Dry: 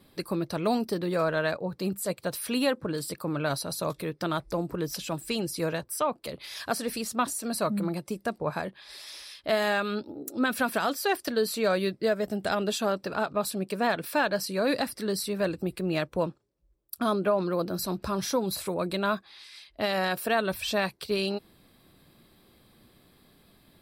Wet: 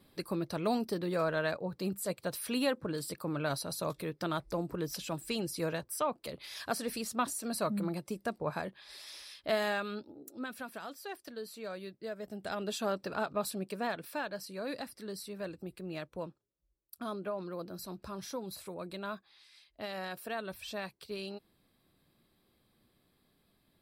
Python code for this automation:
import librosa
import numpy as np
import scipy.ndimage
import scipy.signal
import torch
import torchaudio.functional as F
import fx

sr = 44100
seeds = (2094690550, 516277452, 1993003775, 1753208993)

y = fx.gain(x, sr, db=fx.line((9.56, -5.0), (10.67, -16.5), (11.95, -16.5), (12.91, -5.5), (13.47, -5.5), (14.3, -12.5)))